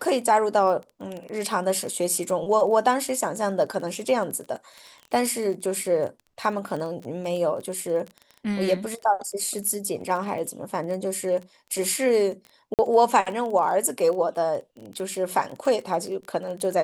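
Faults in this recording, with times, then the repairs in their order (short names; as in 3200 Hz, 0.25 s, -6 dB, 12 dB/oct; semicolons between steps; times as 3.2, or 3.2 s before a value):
crackle 21/s -31 dBFS
12.74–12.79 gap 48 ms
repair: de-click; interpolate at 12.74, 48 ms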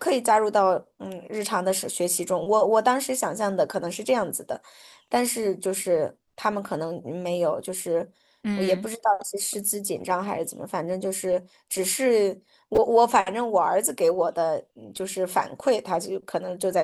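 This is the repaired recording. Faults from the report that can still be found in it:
none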